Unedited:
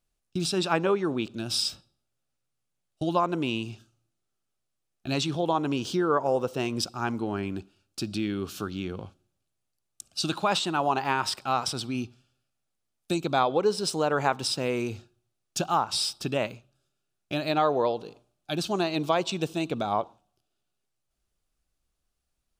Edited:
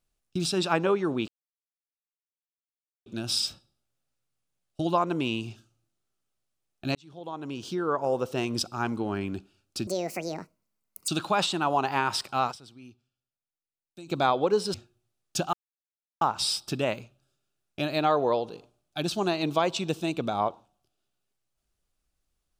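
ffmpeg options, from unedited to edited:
-filter_complex "[0:a]asplit=9[s0][s1][s2][s3][s4][s5][s6][s7][s8];[s0]atrim=end=1.28,asetpts=PTS-STARTPTS,afade=t=out:st=1.276:d=0.004:c=hsin,apad=pad_dur=1.78[s9];[s1]atrim=start=1.28:end=5.17,asetpts=PTS-STARTPTS,afade=t=in:d=0.004:c=hsin,afade=t=out:st=3.886:d=0.004:c=hsin[s10];[s2]atrim=start=5.17:end=8.094,asetpts=PTS-STARTPTS,afade=t=in:d=1.39[s11];[s3]atrim=start=8.09:end=10.21,asetpts=PTS-STARTPTS,asetrate=77175,aresample=44100[s12];[s4]atrim=start=10.206:end=11.76,asetpts=PTS-STARTPTS,afade=t=out:st=1.434:d=0.12:c=exp:silence=0.133352[s13];[s5]atrim=start=11.76:end=13.1,asetpts=PTS-STARTPTS,volume=0.133[s14];[s6]atrim=start=13.1:end=13.872,asetpts=PTS-STARTPTS,afade=t=in:d=0.12:c=exp:silence=0.133352[s15];[s7]atrim=start=14.948:end=15.74,asetpts=PTS-STARTPTS,afade=t=out:st=0.788:d=0.004:c=hsin,apad=pad_dur=0.68[s16];[s8]atrim=start=15.74,asetpts=PTS-STARTPTS,afade=t=in:d=0.004:c=hsin[s17];[s9][s10][s11]concat=n=3:v=0:a=1[s18];[s18][s12]acrossfade=d=0.004:c1=hsin:c2=hsin[s19];[s13][s14][s15]concat=n=3:v=0:a=1[s20];[s19][s20]acrossfade=d=0.004:c1=hsin:c2=hsin[s21];[s16][s17]concat=n=2:v=0:a=1[s22];[s21][s22]acrossfade=d=0.004:c1=hsin:c2=hsin"

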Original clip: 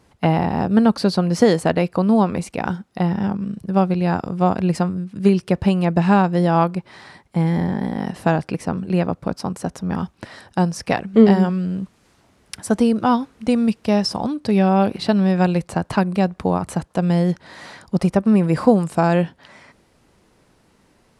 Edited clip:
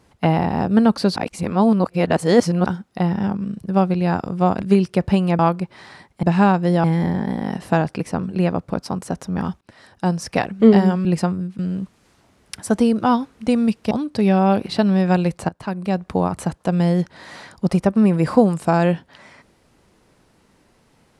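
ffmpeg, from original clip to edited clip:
-filter_complex "[0:a]asplit=12[s0][s1][s2][s3][s4][s5][s6][s7][s8][s9][s10][s11];[s0]atrim=end=1.162[s12];[s1]atrim=start=1.158:end=2.662,asetpts=PTS-STARTPTS,areverse[s13];[s2]atrim=start=2.658:end=4.622[s14];[s3]atrim=start=5.158:end=5.932[s15];[s4]atrim=start=6.538:end=7.382[s16];[s5]atrim=start=5.928:end=6.542[s17];[s6]atrim=start=7.378:end=10.15,asetpts=PTS-STARTPTS,afade=t=out:st=2.768:d=0.004:c=hsin:silence=0.125893[s18];[s7]atrim=start=10.15:end=11.592,asetpts=PTS-STARTPTS,afade=t=in:d=0.59:silence=0.125893[s19];[s8]atrim=start=4.618:end=5.162[s20];[s9]atrim=start=11.588:end=13.912[s21];[s10]atrim=start=14.208:end=15.79,asetpts=PTS-STARTPTS,afade=t=out:st=1.578:d=0.004:c=hsin:silence=0.11885[s22];[s11]atrim=start=15.79,asetpts=PTS-STARTPTS,afade=t=in:d=0.64:silence=0.11885[s23];[s12][s13]acrossfade=d=0.004:c1=hsin:c2=hsin[s24];[s24][s14]acrossfade=d=0.004:c1=hsin:c2=hsin[s25];[s25][s15]acrossfade=d=0.004:c1=hsin:c2=hsin[s26];[s26][s16]acrossfade=d=0.004:c1=hsin:c2=hsin[s27];[s27][s17]acrossfade=d=0.004:c1=hsin:c2=hsin[s28];[s18][s19]concat=n=2:v=0:a=1[s29];[s28][s29]acrossfade=d=0.004:c1=hsin:c2=hsin[s30];[s30][s20]acrossfade=d=0.004:c1=hsin:c2=hsin[s31];[s31][s21]acrossfade=d=0.004:c1=hsin:c2=hsin[s32];[s22][s23]concat=n=2:v=0:a=1[s33];[s32][s33]acrossfade=d=0.004:c1=hsin:c2=hsin"

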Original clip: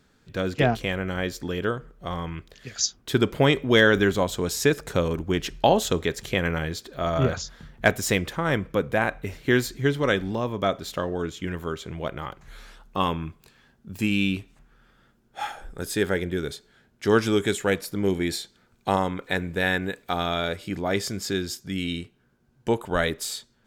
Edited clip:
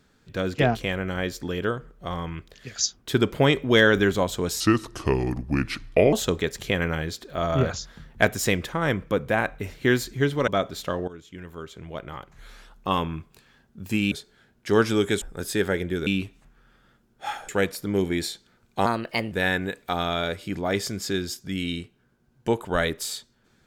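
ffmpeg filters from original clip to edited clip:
-filter_complex "[0:a]asplit=11[s0][s1][s2][s3][s4][s5][s6][s7][s8][s9][s10];[s0]atrim=end=4.604[s11];[s1]atrim=start=4.6:end=5.76,asetpts=PTS-STARTPTS,asetrate=33516,aresample=44100[s12];[s2]atrim=start=5.756:end=10.112[s13];[s3]atrim=start=10.568:end=11.17,asetpts=PTS-STARTPTS,afade=t=out:st=0.598:d=0.004:c=hsin:silence=0.188365[s14];[s4]atrim=start=11.17:end=14.212,asetpts=PTS-STARTPTS,afade=t=in:d=1.8:silence=0.188365[s15];[s5]atrim=start=16.478:end=17.582[s16];[s6]atrim=start=15.628:end=16.482[s17];[s7]atrim=start=14.208:end=15.632[s18];[s8]atrim=start=17.578:end=18.954[s19];[s9]atrim=start=18.95:end=19.52,asetpts=PTS-STARTPTS,asetrate=54684,aresample=44100[s20];[s10]atrim=start=19.516[s21];[s11][s12]acrossfade=d=0.004:c1=hsin:c2=hsin[s22];[s22][s13]acrossfade=d=0.004:c1=hsin:c2=hsin[s23];[s14][s15]concat=n=2:v=0:a=1[s24];[s23][s24]acrossfade=d=0.004:c1=hsin:c2=hsin[s25];[s25][s16]acrossfade=d=0.004:c1=hsin:c2=hsin[s26];[s26][s17]acrossfade=d=0.004:c1=hsin:c2=hsin[s27];[s27][s18]acrossfade=d=0.004:c1=hsin:c2=hsin[s28];[s28][s19]acrossfade=d=0.004:c1=hsin:c2=hsin[s29];[s29][s20]acrossfade=d=0.004:c1=hsin:c2=hsin[s30];[s30][s21]acrossfade=d=0.004:c1=hsin:c2=hsin"

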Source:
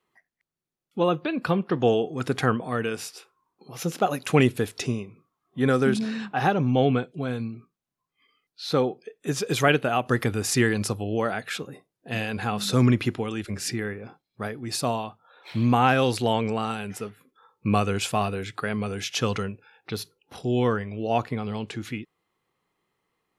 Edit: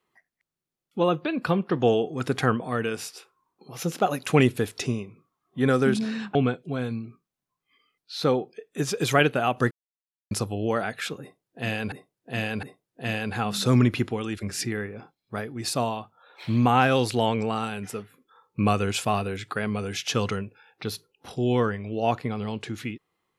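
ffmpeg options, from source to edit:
-filter_complex "[0:a]asplit=6[s0][s1][s2][s3][s4][s5];[s0]atrim=end=6.352[s6];[s1]atrim=start=6.838:end=10.2,asetpts=PTS-STARTPTS,afade=t=out:st=3.358:d=0.004:c=hsin[s7];[s2]atrim=start=10.2:end=10.8,asetpts=PTS-STARTPTS,volume=0[s8];[s3]atrim=start=10.8:end=12.412,asetpts=PTS-STARTPTS,afade=t=in:d=0.004:c=hsin[s9];[s4]atrim=start=11.698:end=12.412[s10];[s5]atrim=start=11.698[s11];[s7][s8][s9]concat=n=3:v=0:a=1[s12];[s6][s12]acrossfade=d=0.004:c1=hsin:c2=hsin[s13];[s13][s10]acrossfade=d=0.004:c1=hsin:c2=hsin[s14];[s14][s11]acrossfade=d=0.004:c1=hsin:c2=hsin"

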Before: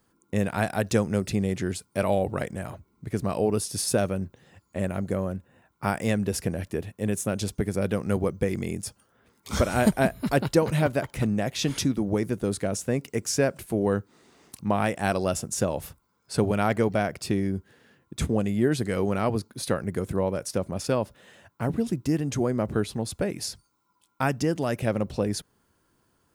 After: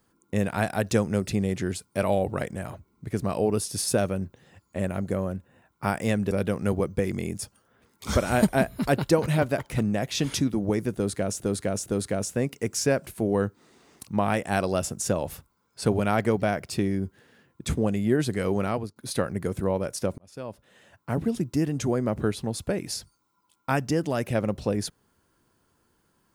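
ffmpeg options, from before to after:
-filter_complex "[0:a]asplit=6[s0][s1][s2][s3][s4][s5];[s0]atrim=end=6.312[s6];[s1]atrim=start=7.748:end=12.842[s7];[s2]atrim=start=12.378:end=12.842[s8];[s3]atrim=start=12.378:end=19.48,asetpts=PTS-STARTPTS,afade=t=out:st=6.782:d=0.32:silence=0.133352[s9];[s4]atrim=start=19.48:end=20.7,asetpts=PTS-STARTPTS,afade=t=in:d=0.004:c=hsin:silence=0.133352,afade=t=out:st=1.216:d=0.004:c=hsin[s10];[s5]atrim=start=20.7,asetpts=PTS-STARTPTS,afade=t=in:d=0.98[s11];[s6][s7]acrossfade=d=0.004:c1=hsin:c2=hsin[s12];[s12][s8]acrossfade=d=0.004:c1=hsin:c2=hsin[s13];[s9][s10][s11]concat=n=3:v=0:a=1[s14];[s13][s14]acrossfade=d=0.004:c1=hsin:c2=hsin"

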